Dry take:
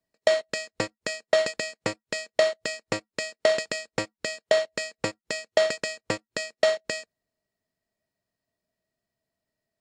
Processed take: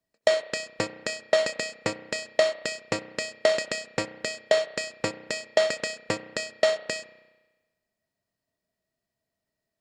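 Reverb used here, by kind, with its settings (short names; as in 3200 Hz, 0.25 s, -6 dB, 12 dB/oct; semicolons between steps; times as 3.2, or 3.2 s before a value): spring tank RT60 1.2 s, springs 32 ms, chirp 60 ms, DRR 13 dB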